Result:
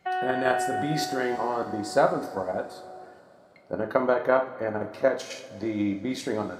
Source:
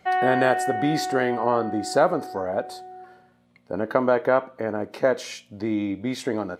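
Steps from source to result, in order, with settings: level held to a coarse grid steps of 9 dB; two-slope reverb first 0.36 s, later 3.5 s, from -19 dB, DRR 3 dB; trim -1 dB

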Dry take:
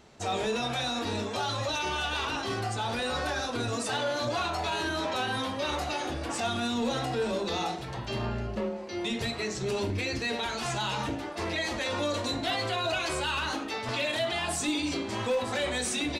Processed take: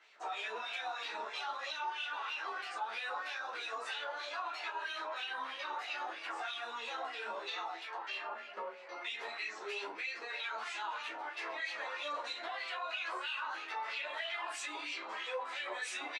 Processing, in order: high-pass 330 Hz 24 dB/octave; treble shelf 9.9 kHz +4 dB; doubling 27 ms -5.5 dB; LFO band-pass sine 3.1 Hz 970–2700 Hz; in parallel at +2 dB: peak limiter -34 dBFS, peak gain reduction 11 dB; on the sum: compression 2.5:1, threshold -34 dBFS, peak gain reduction 6 dB; three-phase chorus; trim -1 dB

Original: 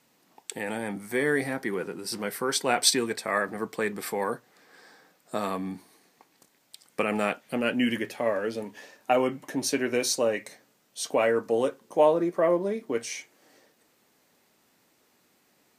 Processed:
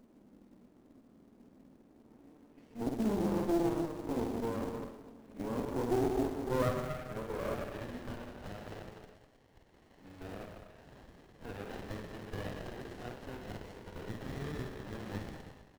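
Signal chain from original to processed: reverse the whole clip; low-pass that closes with the level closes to 1.4 kHz, closed at -25 dBFS; in parallel at +2.5 dB: compression, threshold -33 dBFS, peak gain reduction 16.5 dB; on the sum: peak limiter -17.5 dBFS, peak gain reduction 9.5 dB; upward compressor, threshold -43 dBFS; treble shelf 5.3 kHz -9 dB; on a send at -5.5 dB: reverberation RT60 1.1 s, pre-delay 112 ms; on the sum: band-pass sweep 250 Hz -> 2 kHz, 5.44–8.51 s; short-mantissa float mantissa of 2-bit; reverse bouncing-ball echo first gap 50 ms, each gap 1.3×, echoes 5; sliding maximum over 33 samples; trim -1.5 dB

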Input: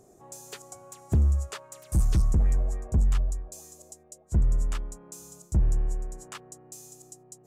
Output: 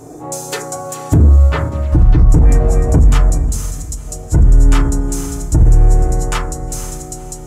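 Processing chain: 1.14–2.30 s: distance through air 340 m; 3.38–4.07 s: steep high-pass 2.3 kHz; echo that smears into a reverb 488 ms, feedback 40%, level -15.5 dB; FDN reverb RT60 0.39 s, low-frequency decay 1×, high-frequency decay 0.35×, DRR -4.5 dB; loudness maximiser +17.5 dB; endings held to a fixed fall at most 120 dB/s; trim -1 dB

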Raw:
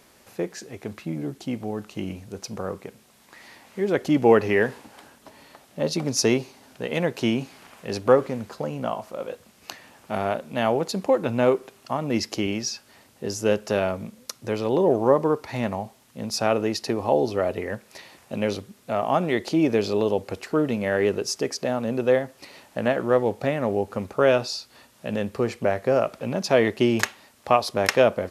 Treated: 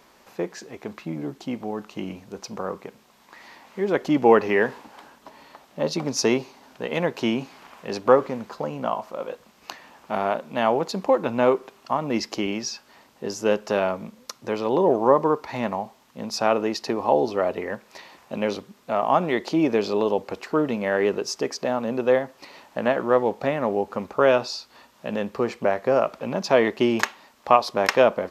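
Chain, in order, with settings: fifteen-band graphic EQ 100 Hz -11 dB, 1 kHz +6 dB, 10 kHz -10 dB

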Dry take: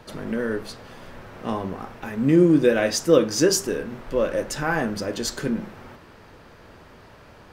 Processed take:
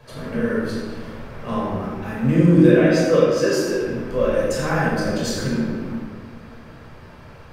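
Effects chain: 2.68–3.81 s: tone controls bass -10 dB, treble -9 dB; reverberation RT60 1.5 s, pre-delay 15 ms, DRR -6.5 dB; trim -6.5 dB

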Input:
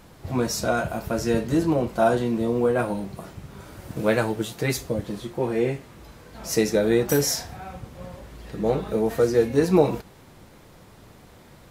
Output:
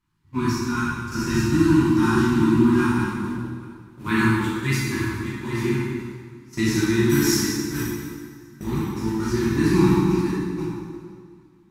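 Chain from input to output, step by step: backward echo that repeats 414 ms, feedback 63%, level -5.5 dB; elliptic band-stop 350–930 Hz, stop band 40 dB; treble shelf 4.8 kHz -6 dB; gate -27 dBFS, range -26 dB; plate-style reverb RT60 1.8 s, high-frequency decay 0.8×, DRR -7.5 dB; trim -1.5 dB

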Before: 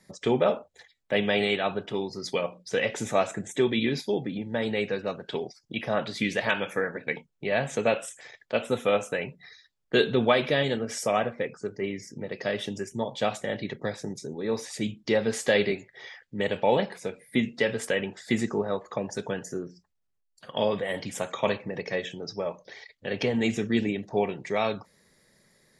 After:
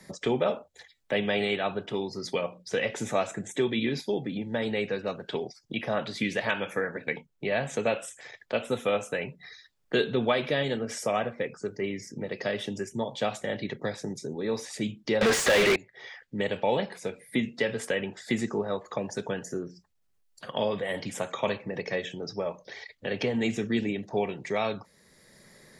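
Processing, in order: 15.21–15.76 s: overdrive pedal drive 37 dB, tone 4.2 kHz, clips at -10 dBFS; three bands compressed up and down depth 40%; trim -2 dB

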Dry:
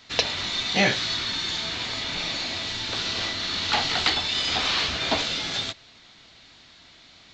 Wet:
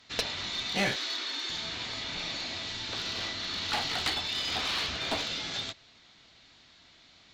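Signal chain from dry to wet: 0.96–1.50 s: steep high-pass 250 Hz 96 dB/octave; one-sided clip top -20 dBFS; trim -6.5 dB

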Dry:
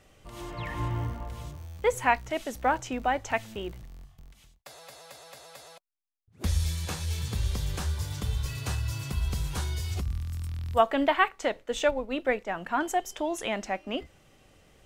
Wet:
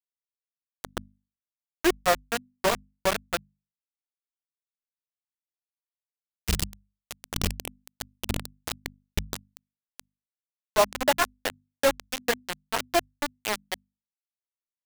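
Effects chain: pitch bend over the whole clip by -6 st ending unshifted; bit crusher 4-bit; hum notches 50/100/150/200/250 Hz; trim +1 dB

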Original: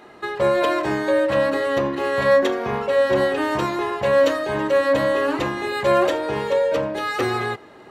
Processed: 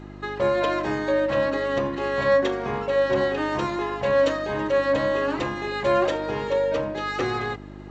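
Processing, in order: mains buzz 50 Hz, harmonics 7, -37 dBFS -1 dB/octave; trim -3.5 dB; G.722 64 kbps 16 kHz

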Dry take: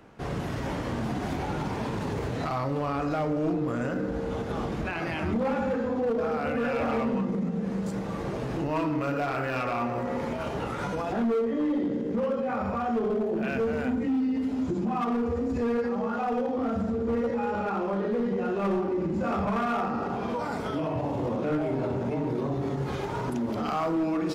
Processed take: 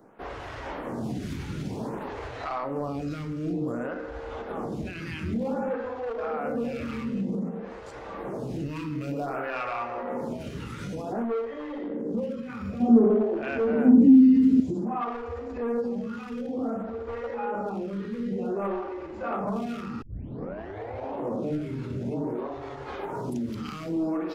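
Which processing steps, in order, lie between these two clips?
12.80–14.60 s: peaking EQ 240 Hz +14 dB 1.6 oct; 20.02 s: tape start 1.14 s; lamp-driven phase shifter 0.54 Hz

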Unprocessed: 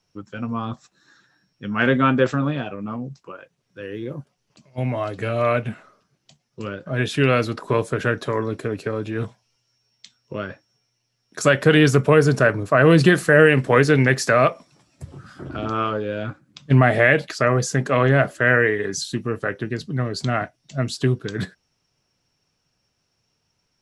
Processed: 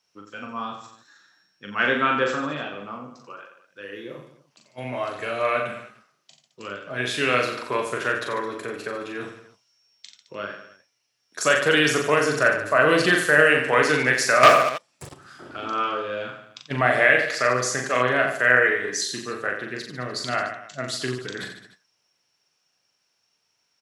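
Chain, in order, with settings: on a send: reverse bouncing-ball echo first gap 40 ms, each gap 1.2×, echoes 5; 14.43–15.14 s: on the sum: waveshaping leveller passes 3; high-pass 910 Hz 6 dB/octave

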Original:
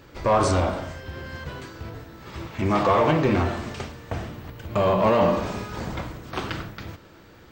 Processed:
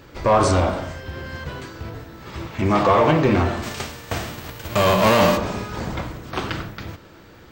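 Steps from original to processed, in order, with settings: 3.62–5.36 s: formants flattened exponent 0.6; trim +3.5 dB

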